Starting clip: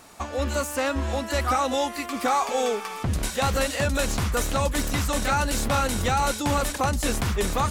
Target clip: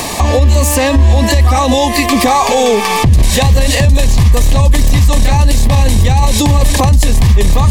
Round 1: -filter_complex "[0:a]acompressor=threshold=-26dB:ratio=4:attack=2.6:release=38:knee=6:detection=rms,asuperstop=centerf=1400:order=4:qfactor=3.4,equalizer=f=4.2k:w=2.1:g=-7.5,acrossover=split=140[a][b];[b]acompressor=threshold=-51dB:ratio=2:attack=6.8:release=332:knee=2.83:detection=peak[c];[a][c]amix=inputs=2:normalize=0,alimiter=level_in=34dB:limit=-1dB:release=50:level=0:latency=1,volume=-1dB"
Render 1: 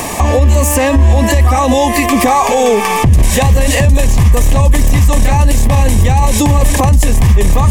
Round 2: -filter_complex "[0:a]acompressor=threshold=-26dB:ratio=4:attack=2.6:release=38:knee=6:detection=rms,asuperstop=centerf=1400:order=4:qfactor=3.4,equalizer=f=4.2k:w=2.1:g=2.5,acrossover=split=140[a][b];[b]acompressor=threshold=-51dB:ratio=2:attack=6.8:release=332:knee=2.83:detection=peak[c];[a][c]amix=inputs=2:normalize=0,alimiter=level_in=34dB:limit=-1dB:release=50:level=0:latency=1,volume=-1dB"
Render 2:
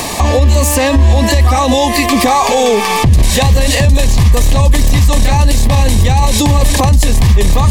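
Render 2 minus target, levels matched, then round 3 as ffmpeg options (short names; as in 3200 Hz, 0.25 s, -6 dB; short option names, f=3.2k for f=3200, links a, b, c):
compressor: peak gain reduction +4.5 dB
-filter_complex "[0:a]acompressor=threshold=-19.5dB:ratio=4:attack=2.6:release=38:knee=6:detection=rms,asuperstop=centerf=1400:order=4:qfactor=3.4,equalizer=f=4.2k:w=2.1:g=2.5,acrossover=split=140[a][b];[b]acompressor=threshold=-51dB:ratio=2:attack=6.8:release=332:knee=2.83:detection=peak[c];[a][c]amix=inputs=2:normalize=0,alimiter=level_in=34dB:limit=-1dB:release=50:level=0:latency=1,volume=-1dB"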